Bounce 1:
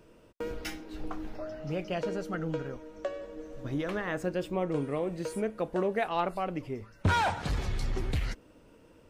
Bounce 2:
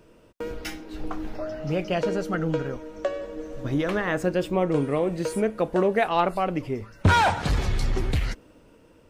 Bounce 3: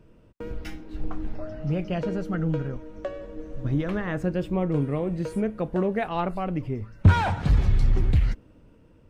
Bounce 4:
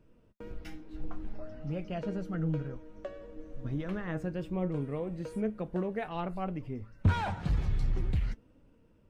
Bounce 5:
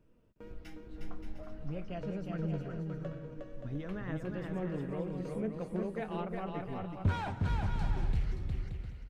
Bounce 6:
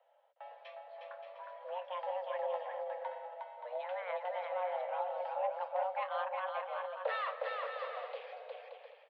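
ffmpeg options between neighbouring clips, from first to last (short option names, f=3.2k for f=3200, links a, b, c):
-af "dynaudnorm=f=200:g=11:m=4.5dB,volume=3dB"
-af "bass=f=250:g=11,treble=f=4k:g=-6,volume=-6dB"
-af "flanger=delay=3.5:depth=3.3:regen=70:speed=0.58:shape=triangular,volume=-4dB"
-af "aecho=1:1:360|576|705.6|783.4|830:0.631|0.398|0.251|0.158|0.1,volume=-4.5dB"
-af "highpass=f=170:t=q:w=0.5412,highpass=f=170:t=q:w=1.307,lowpass=f=3.5k:t=q:w=0.5176,lowpass=f=3.5k:t=q:w=0.7071,lowpass=f=3.5k:t=q:w=1.932,afreqshift=360,volume=1dB"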